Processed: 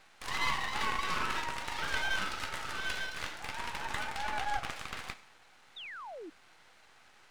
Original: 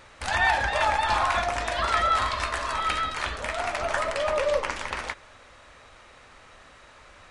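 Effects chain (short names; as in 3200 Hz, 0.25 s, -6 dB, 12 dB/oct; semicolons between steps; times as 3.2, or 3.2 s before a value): Bessel high-pass 210 Hz; frequency shift +240 Hz; Schroeder reverb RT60 0.57 s, combs from 30 ms, DRR 13 dB; half-wave rectifier; painted sound fall, 5.76–6.3, 290–3900 Hz -39 dBFS; gain -5.5 dB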